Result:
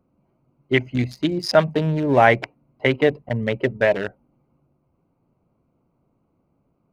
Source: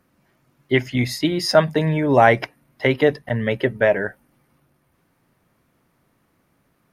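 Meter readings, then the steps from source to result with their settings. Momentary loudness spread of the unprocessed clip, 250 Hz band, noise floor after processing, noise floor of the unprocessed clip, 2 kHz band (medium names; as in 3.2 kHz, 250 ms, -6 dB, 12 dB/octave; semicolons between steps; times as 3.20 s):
9 LU, -1.0 dB, -69 dBFS, -66 dBFS, -0.5 dB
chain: local Wiener filter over 25 samples; dynamic bell 2.5 kHz, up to +4 dB, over -36 dBFS, Q 1.6; trim -1 dB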